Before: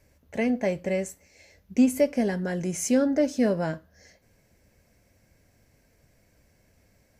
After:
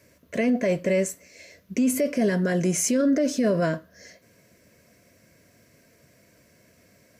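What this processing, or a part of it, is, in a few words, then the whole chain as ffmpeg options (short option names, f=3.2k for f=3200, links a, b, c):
PA system with an anti-feedback notch: -af "highpass=140,asuperstop=centerf=820:order=20:qfactor=4.6,alimiter=limit=-22.5dB:level=0:latency=1:release=15,volume=7.5dB"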